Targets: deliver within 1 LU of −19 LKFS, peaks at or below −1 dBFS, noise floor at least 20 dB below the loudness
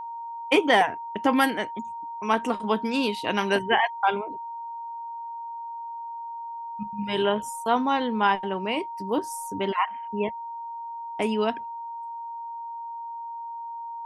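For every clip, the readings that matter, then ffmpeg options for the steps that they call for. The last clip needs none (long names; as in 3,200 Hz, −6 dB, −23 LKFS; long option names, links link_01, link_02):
interfering tone 930 Hz; level of the tone −33 dBFS; integrated loudness −27.5 LKFS; sample peak −6.5 dBFS; target loudness −19.0 LKFS
→ -af "bandreject=frequency=930:width=30"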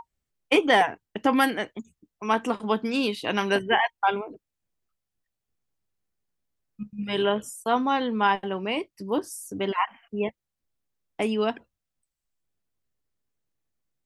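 interfering tone none found; integrated loudness −26.0 LKFS; sample peak −7.0 dBFS; target loudness −19.0 LKFS
→ -af "volume=7dB,alimiter=limit=-1dB:level=0:latency=1"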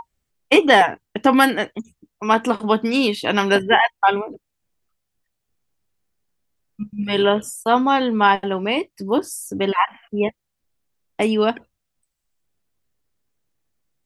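integrated loudness −19.0 LKFS; sample peak −1.0 dBFS; background noise floor −78 dBFS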